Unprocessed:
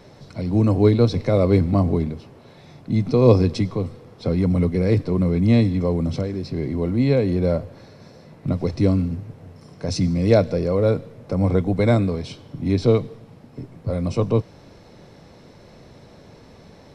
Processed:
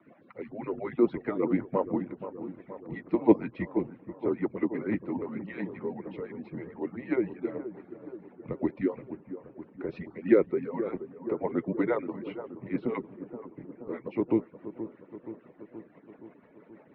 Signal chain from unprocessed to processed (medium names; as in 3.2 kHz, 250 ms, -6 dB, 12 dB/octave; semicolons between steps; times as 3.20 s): harmonic-percussive separation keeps percussive; rotary cabinet horn 6 Hz; mistuned SSB -120 Hz 340–2500 Hz; bucket-brigade echo 475 ms, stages 4096, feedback 65%, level -12 dB